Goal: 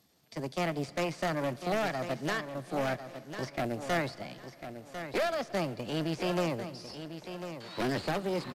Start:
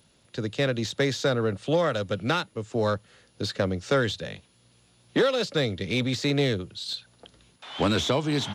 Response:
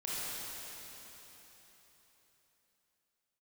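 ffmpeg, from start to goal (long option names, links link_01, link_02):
-filter_complex "[0:a]aeval=exprs='0.251*(cos(1*acos(clip(val(0)/0.251,-1,1)))-cos(1*PI/2))+0.00224*(cos(3*acos(clip(val(0)/0.251,-1,1)))-cos(3*PI/2))+0.0631*(cos(4*acos(clip(val(0)/0.251,-1,1)))-cos(4*PI/2))':channel_layout=same,acrossover=split=2500[link_01][link_02];[link_02]acompressor=threshold=-43dB:ratio=16[link_03];[link_01][link_03]amix=inputs=2:normalize=0,acrusher=bits=6:mode=log:mix=0:aa=0.000001,highpass=frequency=67:poles=1,aeval=exprs='0.15*(abs(mod(val(0)/0.15+3,4)-2)-1)':channel_layout=same,asetrate=55563,aresample=44100,atempo=0.793701,aecho=1:1:1048|2096|3144:0.316|0.0759|0.0182,asplit=2[link_04][link_05];[1:a]atrim=start_sample=2205[link_06];[link_05][link_06]afir=irnorm=-1:irlink=0,volume=-22dB[link_07];[link_04][link_07]amix=inputs=2:normalize=0,aresample=32000,aresample=44100,volume=-6.5dB"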